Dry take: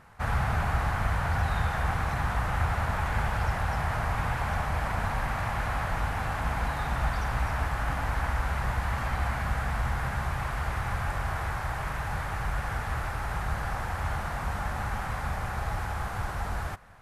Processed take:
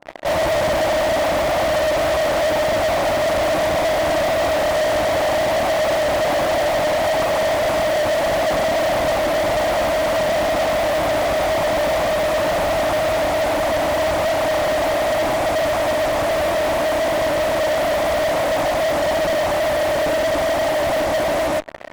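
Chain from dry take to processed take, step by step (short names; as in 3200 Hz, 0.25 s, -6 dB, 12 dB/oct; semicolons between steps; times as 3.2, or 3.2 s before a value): double band-pass 560 Hz, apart 1 oct; wide varispeed 0.776×; in parallel at -11 dB: fuzz box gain 60 dB, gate -60 dBFS; on the sum: gain +5.5 dB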